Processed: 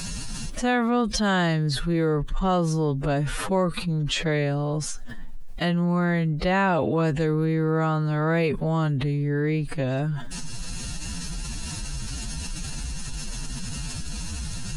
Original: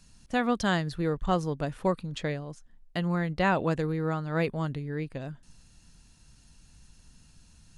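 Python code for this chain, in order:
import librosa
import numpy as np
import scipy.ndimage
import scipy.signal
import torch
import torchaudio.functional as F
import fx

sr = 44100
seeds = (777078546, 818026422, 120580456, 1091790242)

y = fx.stretch_vocoder(x, sr, factor=1.9)
y = fx.env_flatten(y, sr, amount_pct=70)
y = F.gain(torch.from_numpy(y), 1.5).numpy()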